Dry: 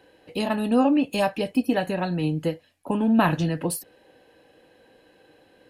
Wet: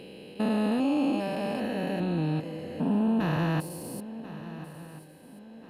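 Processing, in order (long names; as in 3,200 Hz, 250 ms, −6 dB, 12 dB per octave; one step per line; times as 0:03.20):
spectrum averaged block by block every 400 ms
feedback echo with a long and a short gap by turns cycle 1,387 ms, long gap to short 3 to 1, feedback 38%, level −15 dB
level −1 dB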